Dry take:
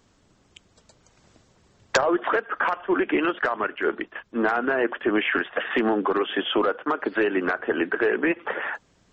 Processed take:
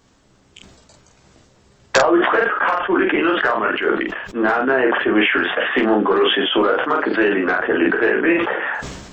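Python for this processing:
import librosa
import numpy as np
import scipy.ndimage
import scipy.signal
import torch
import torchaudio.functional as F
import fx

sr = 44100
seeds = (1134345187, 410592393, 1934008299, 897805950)

y = fx.room_early_taps(x, sr, ms=(15, 47), db=(-4.0, -5.5))
y = fx.sustainer(y, sr, db_per_s=44.0)
y = y * librosa.db_to_amplitude(3.5)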